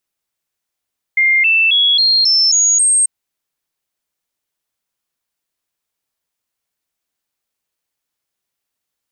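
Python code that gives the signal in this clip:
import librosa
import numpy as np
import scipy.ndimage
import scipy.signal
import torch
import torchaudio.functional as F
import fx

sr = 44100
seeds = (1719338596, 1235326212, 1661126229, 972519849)

y = fx.stepped_sweep(sr, from_hz=2110.0, direction='up', per_octave=3, tones=7, dwell_s=0.27, gap_s=0.0, level_db=-9.0)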